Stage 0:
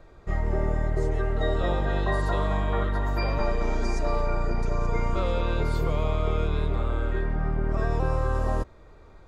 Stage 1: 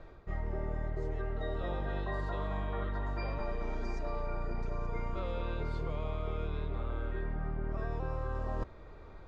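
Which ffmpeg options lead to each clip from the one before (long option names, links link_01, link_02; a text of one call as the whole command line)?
ffmpeg -i in.wav -af "lowpass=4400,areverse,acompressor=threshold=-34dB:ratio=4,areverse" out.wav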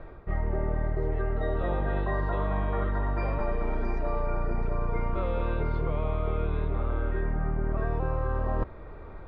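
ffmpeg -i in.wav -af "lowpass=2300,volume=7.5dB" out.wav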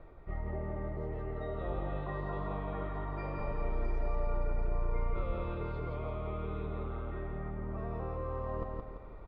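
ffmpeg -i in.wav -af "bandreject=frequency=1600:width=9.7,aecho=1:1:170|340|510|680|850:0.708|0.297|0.125|0.0525|0.022,volume=-9dB" out.wav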